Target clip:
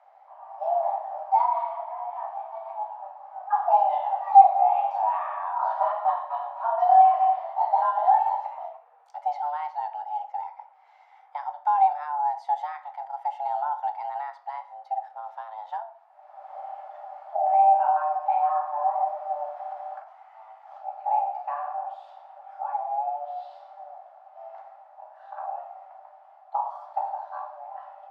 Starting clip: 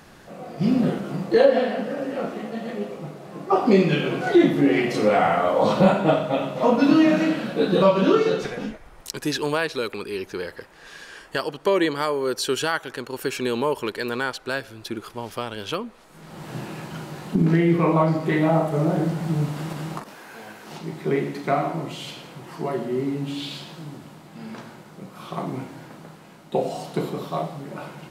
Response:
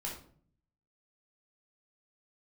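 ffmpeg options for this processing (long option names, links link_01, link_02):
-filter_complex "[0:a]bandpass=frequency=330:width_type=q:width=3.7:csg=0,afreqshift=440,asplit=2[link_01][link_02];[1:a]atrim=start_sample=2205,lowpass=7600[link_03];[link_02][link_03]afir=irnorm=-1:irlink=0,volume=-5dB[link_04];[link_01][link_04]amix=inputs=2:normalize=0"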